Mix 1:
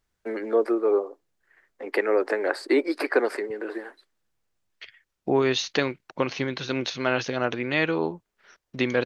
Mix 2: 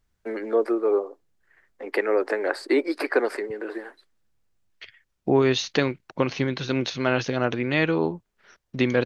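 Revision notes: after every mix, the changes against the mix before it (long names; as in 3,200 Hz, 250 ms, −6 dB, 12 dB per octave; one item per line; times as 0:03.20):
second voice: add low-shelf EQ 260 Hz +7.5 dB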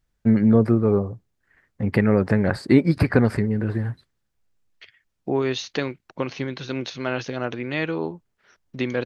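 first voice: remove Butterworth high-pass 320 Hz 48 dB per octave
second voice −3.5 dB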